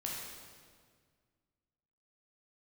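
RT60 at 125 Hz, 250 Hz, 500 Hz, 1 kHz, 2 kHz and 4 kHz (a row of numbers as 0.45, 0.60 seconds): 2.4, 2.2, 1.9, 1.7, 1.6, 1.5 seconds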